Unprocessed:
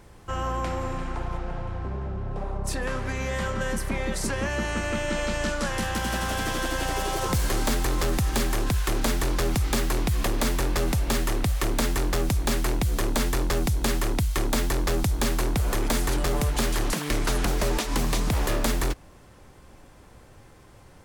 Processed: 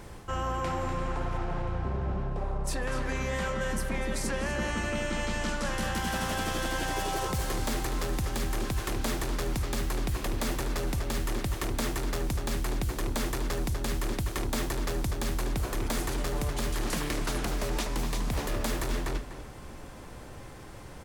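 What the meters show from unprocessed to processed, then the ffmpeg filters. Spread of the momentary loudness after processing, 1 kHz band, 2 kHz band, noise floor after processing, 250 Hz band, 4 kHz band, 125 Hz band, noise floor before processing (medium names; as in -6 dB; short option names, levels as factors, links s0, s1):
3 LU, -4.0 dB, -4.0 dB, -44 dBFS, -4.5 dB, -5.0 dB, -5.0 dB, -51 dBFS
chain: -filter_complex "[0:a]asplit=2[s0][s1];[s1]adelay=246,lowpass=f=4700:p=1,volume=0.447,asplit=2[s2][s3];[s3]adelay=246,lowpass=f=4700:p=1,volume=0.16,asplit=2[s4][s5];[s5]adelay=246,lowpass=f=4700:p=1,volume=0.16[s6];[s0][s2][s4][s6]amix=inputs=4:normalize=0,acontrast=36,bandreject=f=50:t=h:w=6,bandreject=f=100:t=h:w=6,areverse,acompressor=threshold=0.0447:ratio=10,areverse"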